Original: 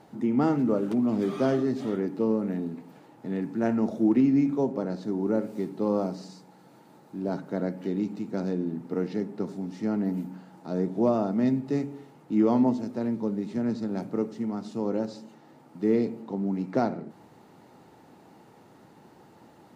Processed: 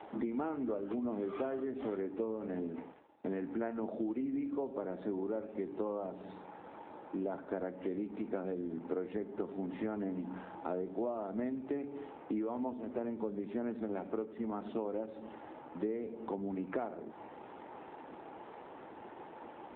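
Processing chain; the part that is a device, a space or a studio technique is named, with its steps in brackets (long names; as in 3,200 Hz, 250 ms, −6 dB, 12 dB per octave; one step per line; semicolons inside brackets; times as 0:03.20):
0:02.73–0:03.36: downward expander −41 dBFS
voicemail (band-pass filter 370–3,000 Hz; downward compressor 8 to 1, threshold −42 dBFS, peak gain reduction 20.5 dB; level +8.5 dB; AMR narrowband 7.4 kbit/s 8,000 Hz)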